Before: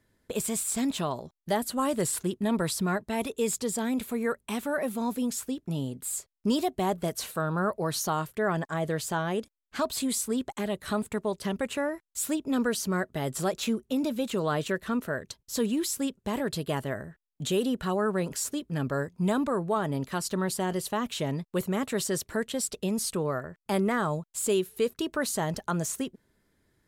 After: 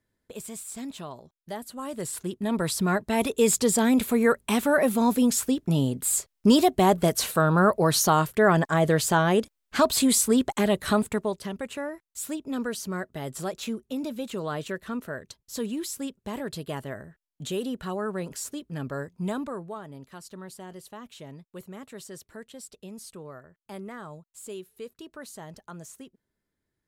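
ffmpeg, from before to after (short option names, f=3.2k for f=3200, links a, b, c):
-af "volume=8dB,afade=t=in:st=1.82:d=0.61:silence=0.421697,afade=t=in:st=2.43:d=1.2:silence=0.354813,afade=t=out:st=10.8:d=0.68:silence=0.266073,afade=t=out:st=19.28:d=0.57:silence=0.334965"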